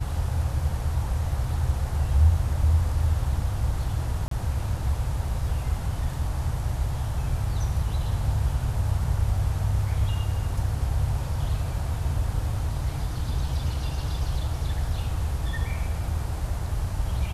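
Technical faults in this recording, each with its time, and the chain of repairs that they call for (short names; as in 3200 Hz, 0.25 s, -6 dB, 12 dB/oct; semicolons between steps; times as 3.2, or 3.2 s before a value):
4.28–4.31 gap 33 ms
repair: interpolate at 4.28, 33 ms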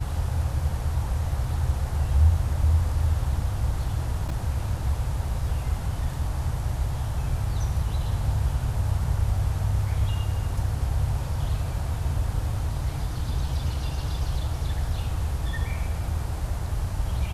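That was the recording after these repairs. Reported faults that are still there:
none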